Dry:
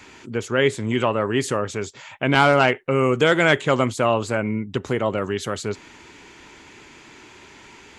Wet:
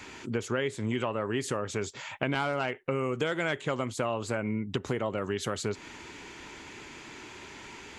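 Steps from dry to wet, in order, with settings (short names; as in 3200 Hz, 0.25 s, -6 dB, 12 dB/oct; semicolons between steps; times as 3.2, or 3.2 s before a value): compressor 6:1, threshold -27 dBFS, peak gain reduction 15 dB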